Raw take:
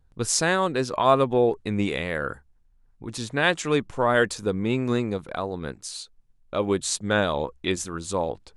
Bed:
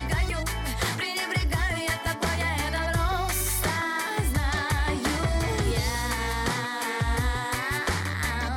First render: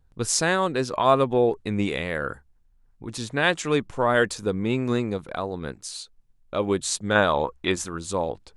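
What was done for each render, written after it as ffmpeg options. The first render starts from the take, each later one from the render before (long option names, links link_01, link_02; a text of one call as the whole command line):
ffmpeg -i in.wav -filter_complex "[0:a]asettb=1/sr,asplit=3[link_01][link_02][link_03];[link_01]atrim=end=7.154[link_04];[link_02]atrim=start=7.15:end=7.89,asetpts=PTS-STARTPTS,afade=type=in:duration=0.004:curve=qsin,afade=type=out:start_time=0.736:duration=0.004:curve=qsin,equalizer=frequency=1100:width=0.78:gain=6.5[link_05];[link_03]atrim=start=7.886[link_06];[link_04][link_05]acrossfade=duration=0.004:curve1=hsin:curve2=qsin[link_07];[link_07][link_06]acrossfade=duration=0.004:curve1=qsin:curve2=hsin" out.wav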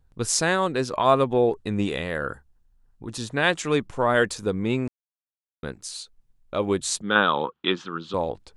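ffmpeg -i in.wav -filter_complex "[0:a]asettb=1/sr,asplit=3[link_01][link_02][link_03];[link_01]atrim=end=1.554[link_04];[link_02]atrim=start=1.55:end=3.34,asetpts=PTS-STARTPTS,afade=type=in:duration=0.004:curve=qsin,afade=type=out:start_time=1.786:duration=0.004:curve=qsin,bandreject=frequency=2200:width=7.3[link_05];[link_03]atrim=start=3.336[link_06];[link_04][link_05]acrossfade=duration=0.004:curve1=hsin:curve2=qsin[link_07];[link_07][link_06]acrossfade=duration=0.004:curve1=qsin:curve2=hsin,asettb=1/sr,asplit=3[link_08][link_09][link_10];[link_08]atrim=end=7.024[link_11];[link_09]atrim=start=7.02:end=8.14,asetpts=PTS-STARTPTS,afade=type=in:duration=0.004:curve=qsin,afade=type=out:start_time=1.116:duration=0.004:curve=qsin,highpass=frequency=150:width=0.5412,highpass=frequency=150:width=1.3066,equalizer=frequency=630:width_type=q:width=4:gain=-9,equalizer=frequency=1300:width_type=q:width=4:gain=6,equalizer=frequency=2100:width_type=q:width=4:gain=-5,equalizer=frequency=3200:width_type=q:width=4:gain=8,lowpass=frequency=3900:width=0.5412,lowpass=frequency=3900:width=1.3066[link_12];[link_10]atrim=start=8.136[link_13];[link_11][link_12]acrossfade=duration=0.004:curve1=hsin:curve2=qsin[link_14];[link_14][link_13]acrossfade=duration=0.004:curve1=qsin:curve2=hsin,asplit=3[link_15][link_16][link_17];[link_15]atrim=end=4.88,asetpts=PTS-STARTPTS,afade=type=out:start_time=4.876:duration=0.004:curve=hsin[link_18];[link_16]atrim=start=4.88:end=5.63,asetpts=PTS-STARTPTS,volume=0[link_19];[link_17]atrim=start=5.63,asetpts=PTS-STARTPTS,afade=type=in:duration=0.004:curve=hsin[link_20];[link_18][link_19][link_20]concat=n=3:v=0:a=1" out.wav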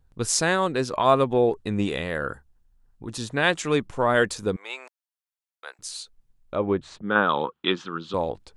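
ffmpeg -i in.wav -filter_complex "[0:a]asettb=1/sr,asplit=3[link_01][link_02][link_03];[link_01]atrim=end=4.564[link_04];[link_02]atrim=start=4.56:end=5.79,asetpts=PTS-STARTPTS,afade=type=in:duration=0.004:curve=qsin,afade=type=out:start_time=1.226:duration=0.004:curve=qsin,highpass=frequency=690:width=0.5412,highpass=frequency=690:width=1.3066[link_05];[link_03]atrim=start=5.786[link_06];[link_04][link_05]acrossfade=duration=0.004:curve1=hsin:curve2=qsin[link_07];[link_07][link_06]acrossfade=duration=0.004:curve1=qsin:curve2=hsin,asplit=3[link_08][link_09][link_10];[link_08]afade=type=out:start_time=6.54:duration=0.02[link_11];[link_09]lowpass=1800,afade=type=in:start_time=6.54:duration=0.02,afade=type=out:start_time=7.28:duration=0.02[link_12];[link_10]afade=type=in:start_time=7.28:duration=0.02[link_13];[link_11][link_12][link_13]amix=inputs=3:normalize=0" out.wav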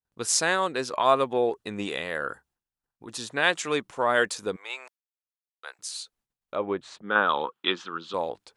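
ffmpeg -i in.wav -af "agate=range=-33dB:threshold=-51dB:ratio=3:detection=peak,highpass=frequency=560:poles=1" out.wav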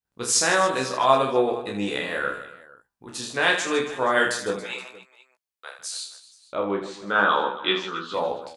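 ffmpeg -i in.wav -filter_complex "[0:a]asplit=2[link_01][link_02];[link_02]adelay=16,volume=-5dB[link_03];[link_01][link_03]amix=inputs=2:normalize=0,aecho=1:1:30|78|154.8|277.7|474.3:0.631|0.398|0.251|0.158|0.1" out.wav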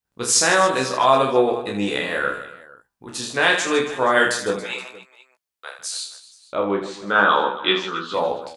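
ffmpeg -i in.wav -af "volume=4dB,alimiter=limit=-3dB:level=0:latency=1" out.wav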